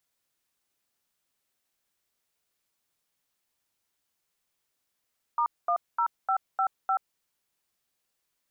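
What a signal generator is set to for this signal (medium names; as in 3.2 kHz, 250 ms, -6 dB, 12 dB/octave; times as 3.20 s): DTMF "*10555", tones 81 ms, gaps 221 ms, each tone -25 dBFS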